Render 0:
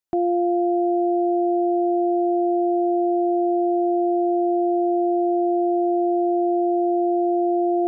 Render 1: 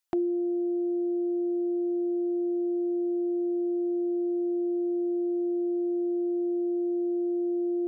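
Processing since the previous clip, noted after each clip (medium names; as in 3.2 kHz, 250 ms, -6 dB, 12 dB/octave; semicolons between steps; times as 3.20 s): band-stop 700 Hz, Q 12; reverb removal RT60 0.77 s; tilt shelf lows -5.5 dB, about 730 Hz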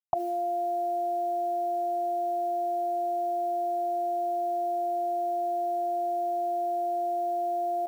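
FFT filter 150 Hz 0 dB, 330 Hz -27 dB, 670 Hz +13 dB, 1.1 kHz +8 dB, 1.6 kHz -15 dB; bit crusher 11-bit; level flattener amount 70%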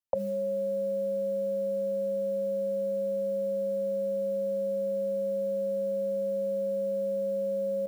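frequency shift -150 Hz; trim -1 dB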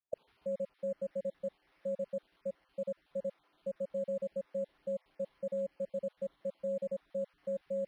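random holes in the spectrogram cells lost 69%; decimation joined by straight lines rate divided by 6×; trim -4 dB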